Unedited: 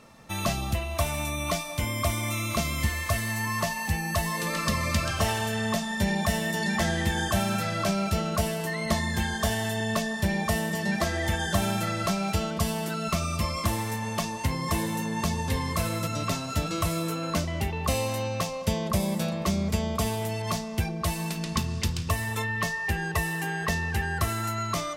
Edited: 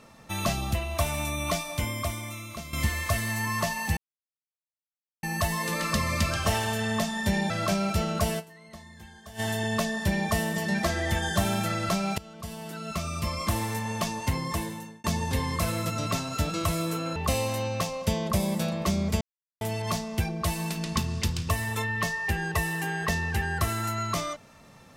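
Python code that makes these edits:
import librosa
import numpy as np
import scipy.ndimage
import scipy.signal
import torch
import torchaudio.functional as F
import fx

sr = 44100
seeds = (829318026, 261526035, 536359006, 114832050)

y = fx.edit(x, sr, fx.fade_out_to(start_s=1.78, length_s=0.95, curve='qua', floor_db=-12.0),
    fx.insert_silence(at_s=3.97, length_s=1.26),
    fx.cut(start_s=6.24, length_s=1.43),
    fx.fade_down_up(start_s=8.56, length_s=1.01, db=-20.0, fade_s=0.17, curve='exp'),
    fx.fade_in_from(start_s=12.35, length_s=1.43, floor_db=-21.0),
    fx.fade_out_span(start_s=14.52, length_s=0.69),
    fx.cut(start_s=17.33, length_s=0.43),
    fx.silence(start_s=19.81, length_s=0.4), tone=tone)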